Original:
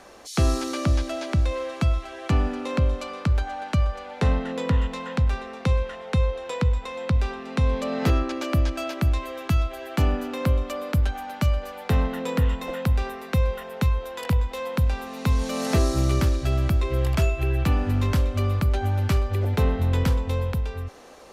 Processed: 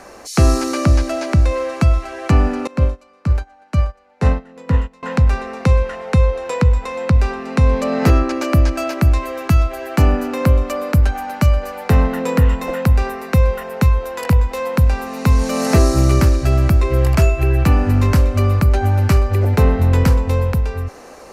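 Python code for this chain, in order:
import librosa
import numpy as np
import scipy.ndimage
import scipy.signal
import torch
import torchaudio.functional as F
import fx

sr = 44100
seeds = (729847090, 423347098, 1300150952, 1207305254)

y = fx.peak_eq(x, sr, hz=3400.0, db=-10.0, octaves=0.38)
y = fx.upward_expand(y, sr, threshold_db=-33.0, expansion=2.5, at=(2.67, 5.03))
y = y * librosa.db_to_amplitude(8.5)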